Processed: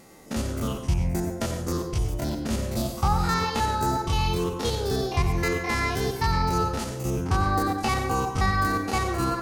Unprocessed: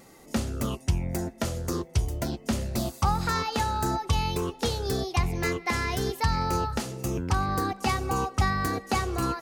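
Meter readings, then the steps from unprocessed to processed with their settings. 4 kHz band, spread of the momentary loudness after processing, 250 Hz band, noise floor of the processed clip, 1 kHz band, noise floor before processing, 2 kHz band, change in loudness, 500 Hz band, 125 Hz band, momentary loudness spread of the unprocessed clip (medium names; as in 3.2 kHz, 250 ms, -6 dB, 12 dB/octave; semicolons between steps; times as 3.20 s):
+1.5 dB, 6 LU, +2.5 dB, -35 dBFS, +2.5 dB, -50 dBFS, +2.5 dB, +2.5 dB, +2.5 dB, +2.0 dB, 5 LU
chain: spectrogram pixelated in time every 50 ms; plate-style reverb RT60 0.5 s, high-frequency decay 0.55×, pre-delay 80 ms, DRR 6 dB; trim +2.5 dB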